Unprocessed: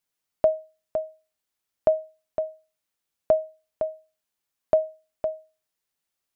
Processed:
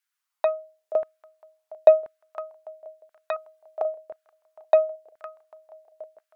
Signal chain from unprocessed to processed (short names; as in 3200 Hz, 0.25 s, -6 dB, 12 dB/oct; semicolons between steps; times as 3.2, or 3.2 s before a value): 3.36–3.85 comb 2.5 ms, depth 74%; swung echo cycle 0.796 s, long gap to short 1.5:1, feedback 52%, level -21 dB; added harmonics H 3 -27 dB, 6 -27 dB, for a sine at -9.5 dBFS; LFO high-pass saw down 0.97 Hz 460–1600 Hz